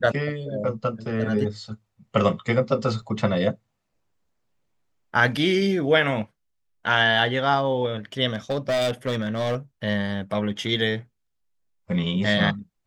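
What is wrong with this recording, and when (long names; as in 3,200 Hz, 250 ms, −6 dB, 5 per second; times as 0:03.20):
0:03.02–0:03.03: drop-out 5.3 ms
0:08.30–0:09.56: clipping −20 dBFS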